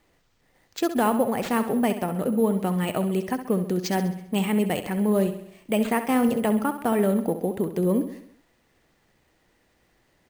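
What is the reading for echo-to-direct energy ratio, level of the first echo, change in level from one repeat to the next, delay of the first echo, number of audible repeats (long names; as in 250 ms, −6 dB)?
−9.5 dB, −11.0 dB, −5.5 dB, 66 ms, 5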